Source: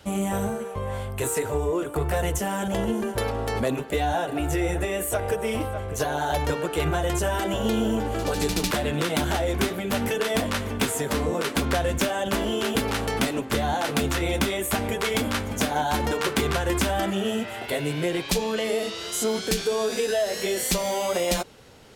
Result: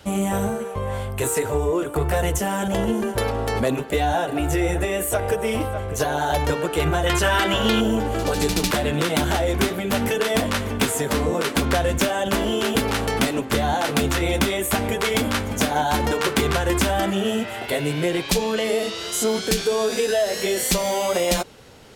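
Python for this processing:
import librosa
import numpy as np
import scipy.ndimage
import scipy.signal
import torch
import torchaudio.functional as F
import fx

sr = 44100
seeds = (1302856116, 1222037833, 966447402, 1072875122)

y = fx.band_shelf(x, sr, hz=2300.0, db=8.0, octaves=2.5, at=(7.06, 7.81))
y = y * librosa.db_to_amplitude(3.5)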